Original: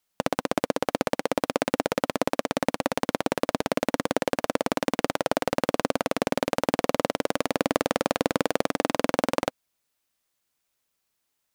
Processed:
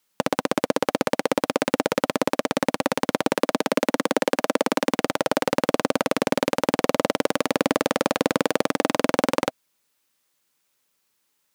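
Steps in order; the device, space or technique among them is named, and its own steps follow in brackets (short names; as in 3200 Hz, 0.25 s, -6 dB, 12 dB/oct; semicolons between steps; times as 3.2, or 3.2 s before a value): 3.33–4.93 HPF 180 Hz 24 dB/oct; PA system with an anti-feedback notch (HPF 120 Hz 12 dB/oct; Butterworth band-stop 690 Hz, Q 6.2; limiter -9.5 dBFS, peak gain reduction 5 dB); gain +6.5 dB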